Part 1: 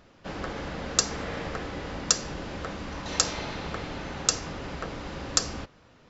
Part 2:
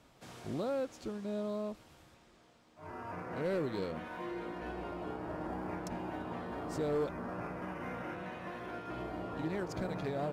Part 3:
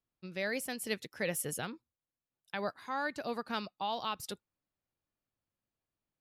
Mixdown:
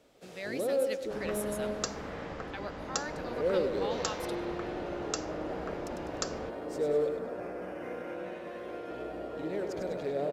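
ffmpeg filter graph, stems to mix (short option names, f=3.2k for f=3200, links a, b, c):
-filter_complex "[0:a]highshelf=f=2.1k:g=-10.5,adelay=850,volume=-3.5dB[a];[1:a]equalizer=f=125:t=o:w=1:g=-4,equalizer=f=500:t=o:w=1:g=10,equalizer=f=1k:t=o:w=1:g=-7,volume=-1dB,asplit=2[b][c];[c]volume=-6dB[d];[2:a]volume=-4.5dB,asplit=2[e][f];[f]volume=-21dB[g];[d][g]amix=inputs=2:normalize=0,aecho=0:1:100|200|300|400|500|600|700:1|0.51|0.26|0.133|0.0677|0.0345|0.0176[h];[a][b][e][h]amix=inputs=4:normalize=0,lowshelf=f=190:g=-6"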